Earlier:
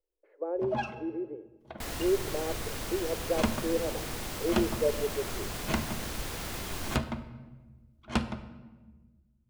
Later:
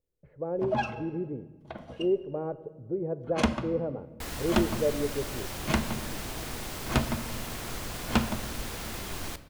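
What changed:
speech: remove Chebyshev high-pass 320 Hz, order 6; first sound +3.5 dB; second sound: entry +2.40 s

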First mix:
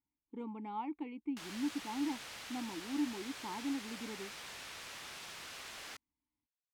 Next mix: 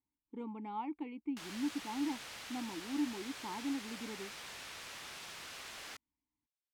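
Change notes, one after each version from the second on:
no change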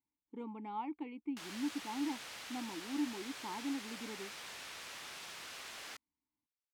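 master: add bass shelf 120 Hz -8 dB

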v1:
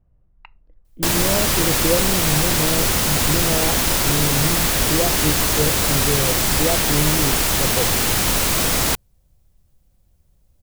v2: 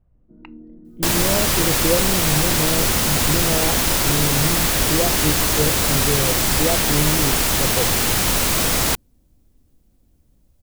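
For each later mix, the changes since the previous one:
first sound: unmuted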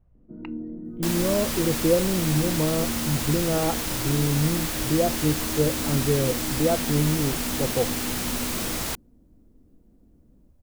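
first sound +7.5 dB; second sound -10.5 dB

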